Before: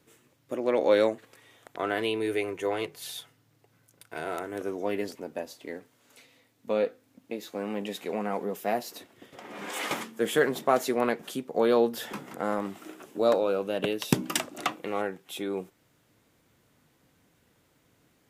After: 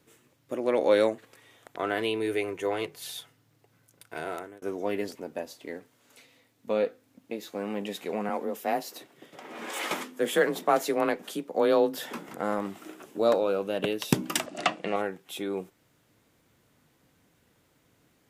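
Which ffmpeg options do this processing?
-filter_complex "[0:a]asettb=1/sr,asplit=3[a][b][c];[a]atrim=end=0.564[d];[b]atrim=start=0.56:end=1.1,asetpts=PTS-STARTPTS,afade=t=in:d=0.004:c=qsin,afade=t=out:st=0.536:d=0.004:c=qsin,equalizer=f=10k:w=3.4:g=8.5[e];[c]atrim=start=1.096[f];[d][e]acrossfade=d=0.004:c1=hsin:c2=qsin[g];[g][f]acrossfade=d=0.004:c1=qsin:c2=hsin,asettb=1/sr,asplit=3[h][i][j];[h]atrim=end=8.294[k];[i]atrim=start=8.29:end=12.29,asetpts=PTS-STARTPTS,afade=t=in:d=0.004:c=qsin,afade=t=out:st=3.996:d=0.004:c=qsin,afreqshift=29[l];[j]atrim=start=12.286[m];[k][l]acrossfade=d=0.004:c1=hsin:c2=qsin[n];[n][m]acrossfade=d=0.004:c1=qsin:c2=hsin,asettb=1/sr,asplit=3[o][p][q];[o]atrim=end=14.464[r];[p]atrim=start=14.46:end=14.96,asetpts=PTS-STARTPTS,afade=t=in:d=0.004:c=qsin,afade=t=out:st=0.496:d=0.004:c=qsin,highpass=100,equalizer=f=180:t=q:w=4:g=9,equalizer=f=650:t=q:w=4:g=10,equalizer=f=1.8k:t=q:w=4:g=5,equalizer=f=2.8k:t=q:w=4:g=6,equalizer=f=4.7k:t=q:w=4:g=5,lowpass=f=9.2k:w=0.5412,lowpass=f=9.2k:w=1.3066[s];[q]atrim=start=14.956[t];[r][s]acrossfade=d=0.004:c1=hsin:c2=qsin[u];[u][t]acrossfade=d=0.004:c1=qsin:c2=hsin,asplit=2[v][w];[v]atrim=end=4.62,asetpts=PTS-STARTPTS,afade=t=out:st=4.14:d=0.48:c=qsin[x];[w]atrim=start=4.62,asetpts=PTS-STARTPTS,afade=t=in:d=0.004:c=hsin[y];[x][y]concat=n=2:v=0:a=1"

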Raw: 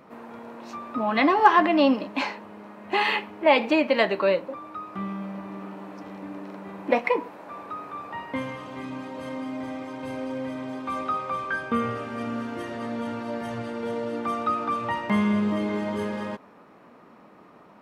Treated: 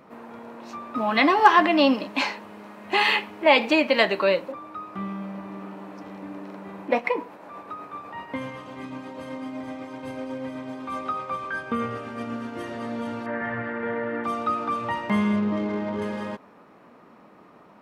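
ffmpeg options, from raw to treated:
-filter_complex "[0:a]asettb=1/sr,asplit=3[a][b][c];[a]atrim=end=0.954[d];[b]atrim=start=0.95:end=4.52,asetpts=PTS-STARTPTS,afade=t=in:d=0.004:c=qsin,afade=t=out:st=3.566:d=0.004:c=qsin,highshelf=f=2.2k:g=7.5[e];[c]atrim=start=4.516[f];[d][e]acrossfade=d=0.004:c1=hsin:c2=qsin[g];[g][f]acrossfade=d=0.004:c1=qsin:c2=hsin,asettb=1/sr,asplit=3[h][i][j];[h]atrim=end=6.834[k];[i]atrim=start=6.83:end=12.57,asetpts=PTS-STARTPTS,afade=t=in:d=0.004:c=qsin,afade=t=out:st=5.736:d=0.004:c=qsin,tremolo=f=8:d=0.33[l];[j]atrim=start=12.566[m];[k][l]acrossfade=d=0.004:c1=hsin:c2=qsin[n];[n][m]acrossfade=d=0.004:c1=qsin:c2=hsin,asettb=1/sr,asplit=3[o][p][q];[o]atrim=end=13.264[r];[p]atrim=start=13.26:end=14.24,asetpts=PTS-STARTPTS,afade=t=in:d=0.004:c=qsin,afade=t=out:st=0.976:d=0.004:c=qsin,lowpass=f=1.8k:t=q:w=5.1[s];[q]atrim=start=14.236[t];[r][s]acrossfade=d=0.004:c1=hsin:c2=qsin[u];[u][t]acrossfade=d=0.004:c1=qsin:c2=hsin,asettb=1/sr,asplit=3[v][w][x];[v]atrim=end=15.364[y];[w]atrim=start=15.36:end=16.02,asetpts=PTS-STARTPTS,afade=t=in:d=0.004:c=qsin,afade=t=out:st=0.656:d=0.004:c=qsin,adynamicsmooth=sensitivity=4:basefreq=1.8k[z];[x]atrim=start=16.016[aa];[y][z]acrossfade=d=0.004:c1=hsin:c2=qsin[ab];[ab][aa]acrossfade=d=0.004:c1=qsin:c2=hsin"

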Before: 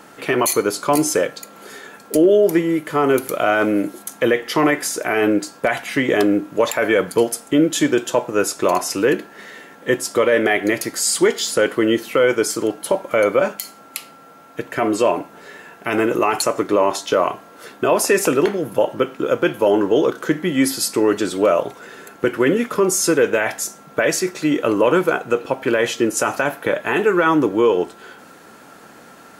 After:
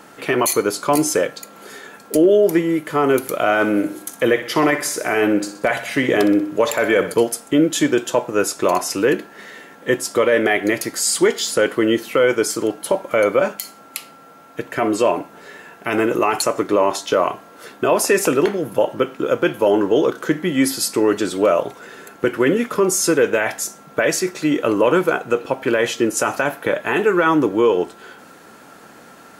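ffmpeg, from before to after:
-filter_complex "[0:a]asettb=1/sr,asplit=3[a][b][c];[a]atrim=end=3.444[d];[b]atrim=start=3.44:end=7.14,asetpts=PTS-STARTPTS,afade=t=in:d=0.004:c=qsin,afade=t=out:st=3.696:d=0.004:c=qsin,aecho=1:1:62|124|186|248|310:0.251|0.128|0.0653|0.0333|0.017,atrim=end_sample=163170[e];[c]atrim=start=7.136[f];[d][e]acrossfade=d=0.004:c1=hsin:c2=qsin[g];[g][f]acrossfade=d=0.004:c1=qsin:c2=hsin"

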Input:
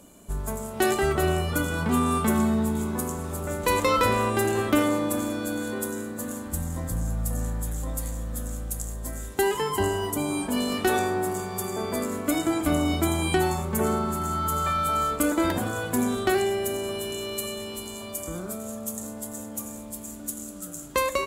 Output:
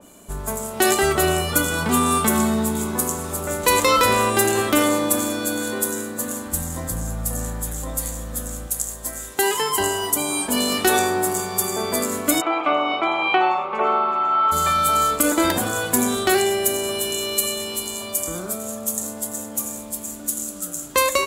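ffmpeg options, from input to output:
-filter_complex "[0:a]asettb=1/sr,asplit=3[a][b][c];[a]atrim=end=8.674[d];[b]atrim=start=8.67:end=10.49,asetpts=PTS-STARTPTS,afade=t=in:d=0.004:c=qsin,afade=t=out:st=1.816:d=0.004:c=qsin,lowshelf=f=360:g=-6.5[e];[c]atrim=start=10.486[f];[d][e]acrossfade=d=0.004:c1=hsin:c2=qsin[g];[g][f]acrossfade=d=0.004:c1=qsin:c2=hsin,asplit=3[h][i][j];[h]afade=t=out:st=12.4:d=0.02[k];[i]highpass=470,equalizer=f=540:t=q:w=4:g=3,equalizer=f=800:t=q:w=4:g=6,equalizer=f=1.2k:t=q:w=4:g=9,equalizer=f=1.7k:t=q:w=4:g=-7,equalizer=f=2.5k:t=q:w=4:g=7,lowpass=f=2.9k:w=0.5412,lowpass=f=2.9k:w=1.3066,afade=t=in:st=12.4:d=0.02,afade=t=out:st=14.51:d=0.02[l];[j]afade=t=in:st=14.51:d=0.02[m];[k][l][m]amix=inputs=3:normalize=0,lowshelf=f=250:g=-7.5,alimiter=level_in=12.5dB:limit=-1dB:release=50:level=0:latency=1,adynamicequalizer=threshold=0.0282:dfrequency=3200:dqfactor=0.7:tfrequency=3200:tqfactor=0.7:attack=5:release=100:ratio=0.375:range=3:mode=boostabove:tftype=highshelf,volume=-6dB"

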